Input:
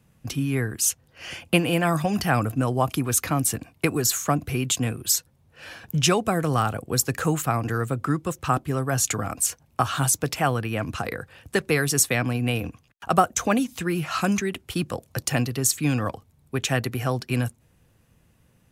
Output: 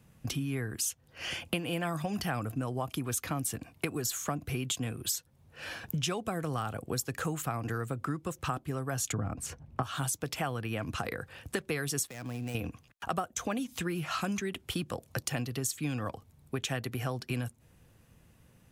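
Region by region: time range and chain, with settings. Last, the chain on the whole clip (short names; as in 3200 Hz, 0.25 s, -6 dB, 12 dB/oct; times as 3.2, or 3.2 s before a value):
9.12–9.83 LPF 1800 Hz 6 dB/oct + low shelf 310 Hz +11 dB
12.07–12.55 switching dead time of 0.11 ms + compressor 2.5:1, threshold -38 dBFS
whole clip: dynamic EQ 3300 Hz, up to +5 dB, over -49 dBFS, Q 6.6; compressor 4:1, threshold -32 dBFS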